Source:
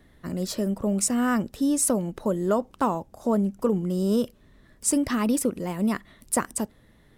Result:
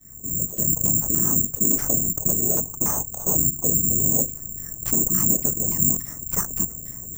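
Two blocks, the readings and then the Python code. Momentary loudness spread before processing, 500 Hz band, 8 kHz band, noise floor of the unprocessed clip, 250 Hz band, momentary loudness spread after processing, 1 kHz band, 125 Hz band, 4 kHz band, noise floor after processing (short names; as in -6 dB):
8 LU, -7.5 dB, +10.0 dB, -58 dBFS, -5.5 dB, 8 LU, -8.5 dB, +3.5 dB, n/a, -38 dBFS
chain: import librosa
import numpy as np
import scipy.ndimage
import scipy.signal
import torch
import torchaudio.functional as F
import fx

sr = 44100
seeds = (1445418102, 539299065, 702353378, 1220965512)

y = fx.fade_in_head(x, sr, length_s=0.86)
y = fx.high_shelf(y, sr, hz=11000.0, db=3.5)
y = fx.tube_stage(y, sr, drive_db=20.0, bias=0.65)
y = fx.whisperise(y, sr, seeds[0])
y = fx.bass_treble(y, sr, bass_db=10, treble_db=-11)
y = fx.filter_lfo_lowpass(y, sr, shape='saw_down', hz=3.5, low_hz=350.0, high_hz=4400.0, q=1.3)
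y = (np.kron(y[::6], np.eye(6)[0]) * 6)[:len(y)]
y = fx.env_flatten(y, sr, amount_pct=50)
y = F.gain(torch.from_numpy(y), -8.0).numpy()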